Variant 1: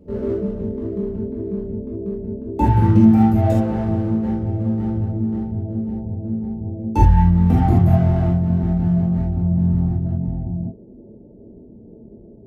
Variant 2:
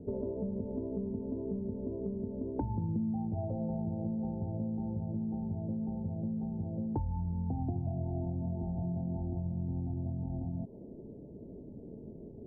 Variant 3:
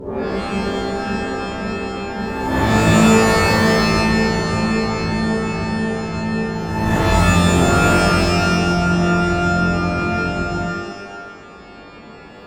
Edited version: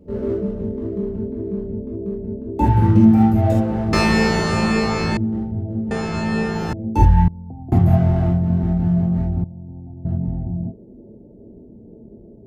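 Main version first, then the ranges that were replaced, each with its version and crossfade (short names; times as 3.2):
1
3.93–5.17 from 3
5.91–6.73 from 3
7.28–7.72 from 2
9.44–10.05 from 2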